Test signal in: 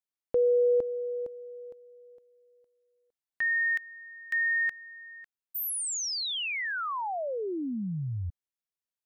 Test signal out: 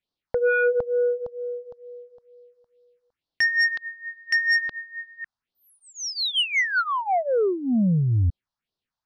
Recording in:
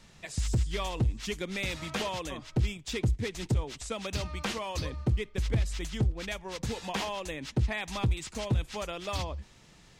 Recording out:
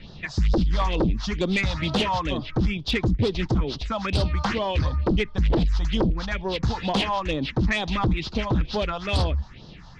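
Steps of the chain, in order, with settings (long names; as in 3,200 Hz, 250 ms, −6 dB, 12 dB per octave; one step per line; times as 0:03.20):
inverse Chebyshev low-pass filter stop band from 8,700 Hz, stop band 40 dB
all-pass phaser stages 4, 2.2 Hz, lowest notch 360–2,200 Hz
sine wavefolder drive 10 dB, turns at −16.5 dBFS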